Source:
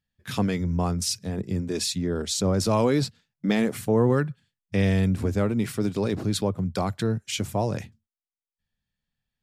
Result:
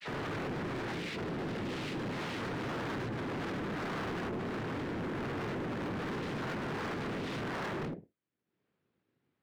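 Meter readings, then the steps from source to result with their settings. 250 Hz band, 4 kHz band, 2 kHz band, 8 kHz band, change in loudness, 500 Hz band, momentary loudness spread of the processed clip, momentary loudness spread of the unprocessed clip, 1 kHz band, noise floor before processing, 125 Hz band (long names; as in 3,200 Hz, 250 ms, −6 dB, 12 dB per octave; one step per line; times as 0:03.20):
−12.0 dB, −12.0 dB, −2.5 dB, −22.5 dB, −11.5 dB, −11.5 dB, 1 LU, 8 LU, −6.0 dB, below −85 dBFS, −14.0 dB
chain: peak hold with a rise ahead of every peak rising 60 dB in 2.04 s
all-pass dispersion lows, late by 75 ms, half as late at 2,300 Hz
tube saturation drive 32 dB, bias 0.4
cochlear-implant simulation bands 3
in parallel at +2 dB: brickwall limiter −30.5 dBFS, peak gain reduction 9.5 dB
on the sum: high-frequency loss of the air 420 metres
hard clipping −35 dBFS, distortion −7 dB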